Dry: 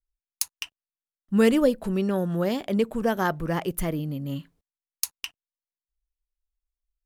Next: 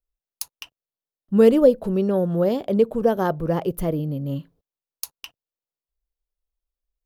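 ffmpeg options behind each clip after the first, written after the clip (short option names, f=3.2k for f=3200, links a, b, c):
-af "equalizer=f=125:t=o:w=1:g=5,equalizer=f=500:t=o:w=1:g=8,equalizer=f=2k:t=o:w=1:g=-7,equalizer=f=8k:t=o:w=1:g=-8"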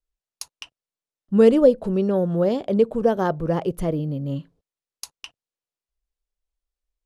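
-af "lowpass=f=9.8k:w=0.5412,lowpass=f=9.8k:w=1.3066"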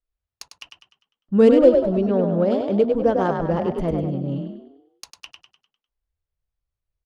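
-filter_complex "[0:a]asplit=7[a][b][c][d][e][f][g];[b]adelay=100,afreqshift=34,volume=-5dB[h];[c]adelay=200,afreqshift=68,volume=-11.9dB[i];[d]adelay=300,afreqshift=102,volume=-18.9dB[j];[e]adelay=400,afreqshift=136,volume=-25.8dB[k];[f]adelay=500,afreqshift=170,volume=-32.7dB[l];[g]adelay=600,afreqshift=204,volume=-39.7dB[m];[a][h][i][j][k][l][m]amix=inputs=7:normalize=0,adynamicsmooth=sensitivity=2:basefreq=3.7k"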